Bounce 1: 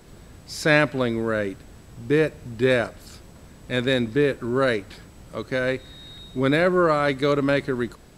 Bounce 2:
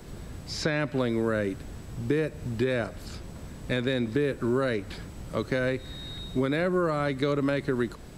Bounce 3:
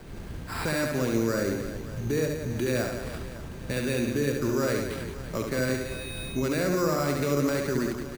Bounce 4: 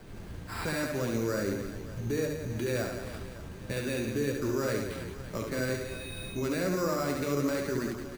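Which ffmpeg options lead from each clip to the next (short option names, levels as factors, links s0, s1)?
-filter_complex "[0:a]lowshelf=f=320:g=4,alimiter=limit=0.224:level=0:latency=1:release=256,acrossover=split=290|6200[s0][s1][s2];[s0]acompressor=threshold=0.0251:ratio=4[s3];[s1]acompressor=threshold=0.0398:ratio=4[s4];[s2]acompressor=threshold=0.00126:ratio=4[s5];[s3][s4][s5]amix=inputs=3:normalize=0,volume=1.26"
-af "alimiter=limit=0.106:level=0:latency=1:release=30,acrusher=samples=7:mix=1:aa=0.000001,aecho=1:1:70|175|332.5|568.8|923.1:0.631|0.398|0.251|0.158|0.1"
-af "flanger=delay=9.4:depth=1.8:regen=-44:speed=1.9:shape=triangular"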